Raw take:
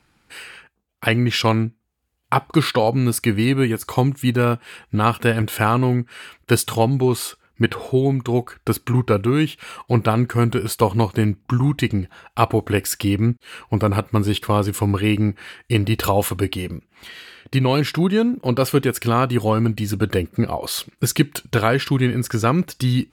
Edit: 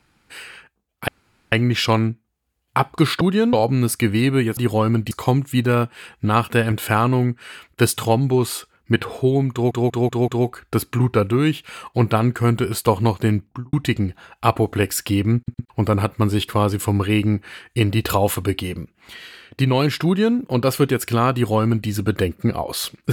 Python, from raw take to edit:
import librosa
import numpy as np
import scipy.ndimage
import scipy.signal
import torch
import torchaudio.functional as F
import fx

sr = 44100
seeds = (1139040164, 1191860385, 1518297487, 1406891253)

y = fx.studio_fade_out(x, sr, start_s=11.31, length_s=0.36)
y = fx.edit(y, sr, fx.insert_room_tone(at_s=1.08, length_s=0.44),
    fx.stutter(start_s=8.22, slice_s=0.19, count=5),
    fx.stutter_over(start_s=13.31, slice_s=0.11, count=3),
    fx.duplicate(start_s=17.99, length_s=0.32, to_s=2.77),
    fx.duplicate(start_s=19.28, length_s=0.54, to_s=3.81), tone=tone)